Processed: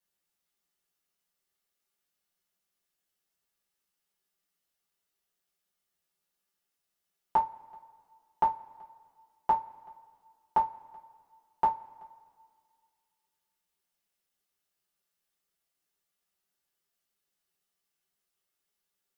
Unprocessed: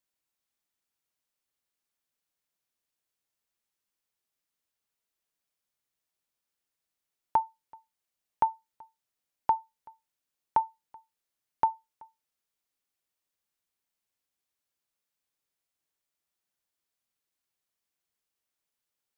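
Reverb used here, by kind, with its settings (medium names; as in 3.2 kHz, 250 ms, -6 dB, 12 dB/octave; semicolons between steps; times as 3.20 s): two-slope reverb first 0.21 s, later 2.1 s, from -28 dB, DRR -6 dB; trim -4.5 dB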